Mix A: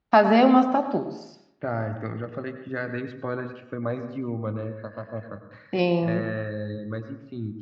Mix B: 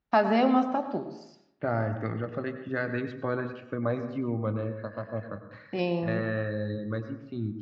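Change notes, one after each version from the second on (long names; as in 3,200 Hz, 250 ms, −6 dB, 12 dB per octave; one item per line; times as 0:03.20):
first voice −6.0 dB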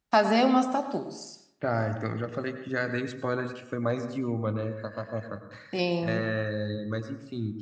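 master: remove high-frequency loss of the air 270 metres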